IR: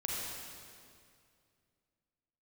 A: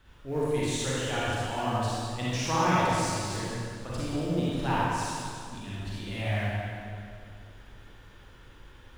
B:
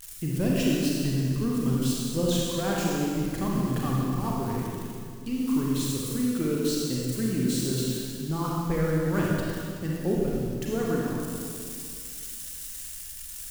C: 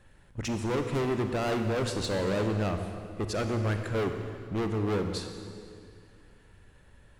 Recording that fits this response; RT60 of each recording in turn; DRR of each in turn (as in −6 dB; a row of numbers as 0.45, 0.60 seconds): B; 2.3, 2.3, 2.3 seconds; −9.0, −4.5, 5.5 decibels